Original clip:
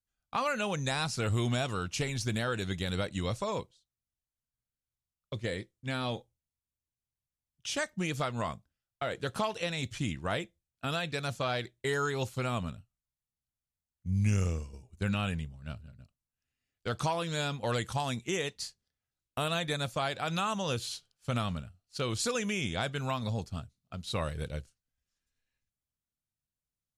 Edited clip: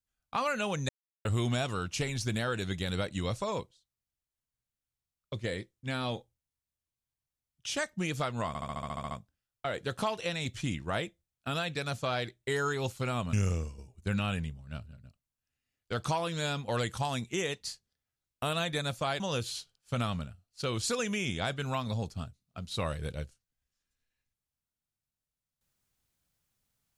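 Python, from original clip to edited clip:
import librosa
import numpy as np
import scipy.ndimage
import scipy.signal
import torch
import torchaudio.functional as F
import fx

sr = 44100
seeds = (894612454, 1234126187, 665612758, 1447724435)

y = fx.edit(x, sr, fx.silence(start_s=0.89, length_s=0.36),
    fx.stutter(start_s=8.48, slice_s=0.07, count=10),
    fx.cut(start_s=12.7, length_s=1.58),
    fx.cut(start_s=20.15, length_s=0.41), tone=tone)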